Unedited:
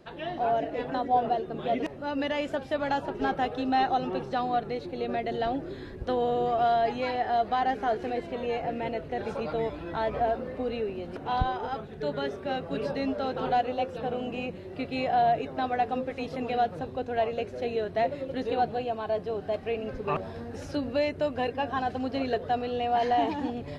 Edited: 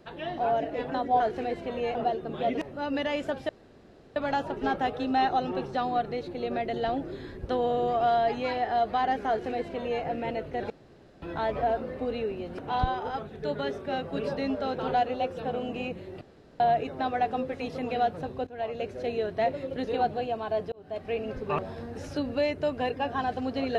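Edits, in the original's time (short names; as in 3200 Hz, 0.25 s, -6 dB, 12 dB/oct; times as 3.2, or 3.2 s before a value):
2.74 insert room tone 0.67 s
7.86–8.61 copy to 1.2
9.28–9.8 room tone
14.79–15.18 room tone
17.05–17.65 fade in equal-power, from -15 dB
19.3–19.71 fade in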